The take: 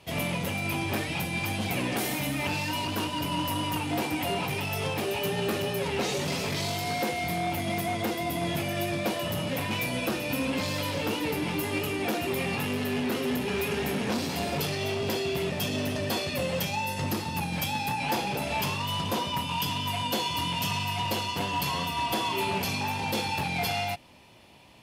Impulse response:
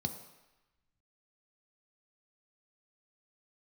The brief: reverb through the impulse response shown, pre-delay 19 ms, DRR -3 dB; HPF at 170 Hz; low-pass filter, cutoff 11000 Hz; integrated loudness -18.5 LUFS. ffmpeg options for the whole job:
-filter_complex "[0:a]highpass=170,lowpass=11k,asplit=2[a][b];[1:a]atrim=start_sample=2205,adelay=19[c];[b][c]afir=irnorm=-1:irlink=0,volume=1.5dB[d];[a][d]amix=inputs=2:normalize=0,volume=4dB"

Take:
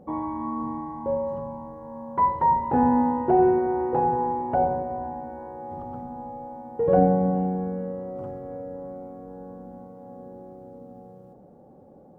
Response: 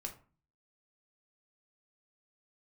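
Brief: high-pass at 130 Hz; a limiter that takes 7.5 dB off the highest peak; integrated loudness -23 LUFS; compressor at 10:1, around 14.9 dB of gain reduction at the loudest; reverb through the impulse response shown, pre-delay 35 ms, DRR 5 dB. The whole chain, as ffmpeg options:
-filter_complex "[0:a]highpass=130,acompressor=threshold=-30dB:ratio=10,alimiter=level_in=4dB:limit=-24dB:level=0:latency=1,volume=-4dB,asplit=2[a][b];[1:a]atrim=start_sample=2205,adelay=35[c];[b][c]afir=irnorm=-1:irlink=0,volume=-3dB[d];[a][d]amix=inputs=2:normalize=0,volume=12.5dB"

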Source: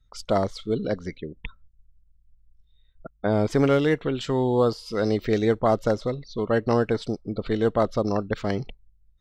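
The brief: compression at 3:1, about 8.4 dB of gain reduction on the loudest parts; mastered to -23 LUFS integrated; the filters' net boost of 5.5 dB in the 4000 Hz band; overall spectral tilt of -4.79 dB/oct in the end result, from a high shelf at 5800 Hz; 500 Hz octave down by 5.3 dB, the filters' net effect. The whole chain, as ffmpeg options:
-af "equalizer=f=500:t=o:g=-6.5,equalizer=f=4k:t=o:g=5,highshelf=f=5.8k:g=5,acompressor=threshold=-30dB:ratio=3,volume=11dB"

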